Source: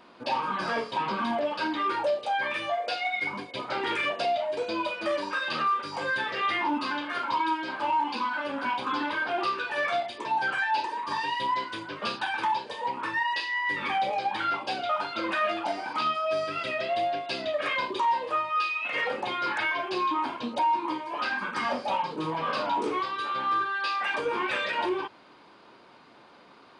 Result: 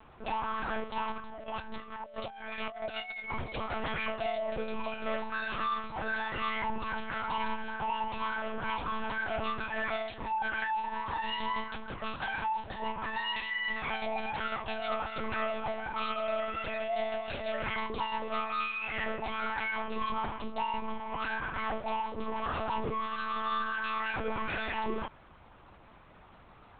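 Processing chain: bass shelf 280 Hz -3 dB; 1.12–3.68 s: compressor with a negative ratio -35 dBFS, ratio -0.5; saturation -27 dBFS, distortion -13 dB; distance through air 210 m; monotone LPC vocoder at 8 kHz 220 Hz

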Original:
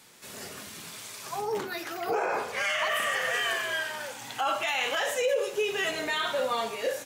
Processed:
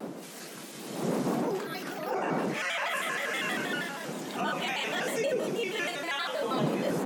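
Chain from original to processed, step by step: wind noise 360 Hz -30 dBFS; steep high-pass 160 Hz 72 dB/octave; in parallel at -2.5 dB: peak limiter -21.5 dBFS, peak gain reduction 10.5 dB; on the sum: reverse echo 51 ms -8 dB; vibrato with a chosen wave square 6.3 Hz, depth 160 cents; trim -8 dB

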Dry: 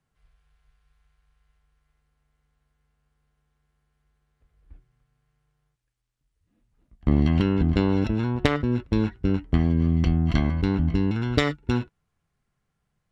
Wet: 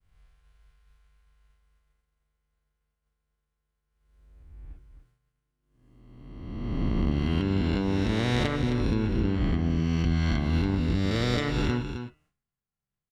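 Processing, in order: reverse spectral sustain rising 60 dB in 1.70 s; compression, threshold -22 dBFS, peak gain reduction 10 dB; de-hum 152.4 Hz, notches 21; on a send: delay 262 ms -8.5 dB; on the sum: expander -59 dBFS

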